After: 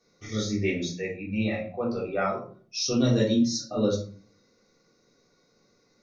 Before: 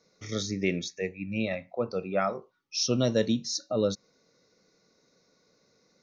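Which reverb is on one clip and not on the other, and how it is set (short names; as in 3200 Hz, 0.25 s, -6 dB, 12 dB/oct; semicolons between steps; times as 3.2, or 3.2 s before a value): shoebox room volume 310 m³, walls furnished, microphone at 3.6 m; gain -5 dB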